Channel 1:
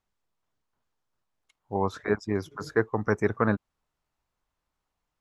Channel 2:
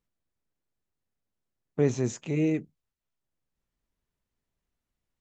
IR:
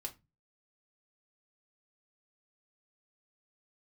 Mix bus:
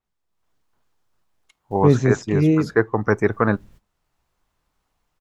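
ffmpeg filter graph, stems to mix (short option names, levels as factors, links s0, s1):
-filter_complex "[0:a]volume=0.708,asplit=3[s0][s1][s2];[s1]volume=0.178[s3];[1:a]lowshelf=f=370:g=10,acompressor=mode=upward:threshold=0.0251:ratio=2.5,adelay=50,volume=0.562[s4];[s2]apad=whole_len=231633[s5];[s4][s5]sidechaingate=range=0.0224:threshold=0.00158:ratio=16:detection=peak[s6];[2:a]atrim=start_sample=2205[s7];[s3][s7]afir=irnorm=-1:irlink=0[s8];[s0][s6][s8]amix=inputs=3:normalize=0,dynaudnorm=f=260:g=3:m=3.55,adynamicequalizer=threshold=0.00447:dfrequency=5100:dqfactor=0.7:tfrequency=5100:tqfactor=0.7:attack=5:release=100:ratio=0.375:range=2:mode=cutabove:tftype=highshelf"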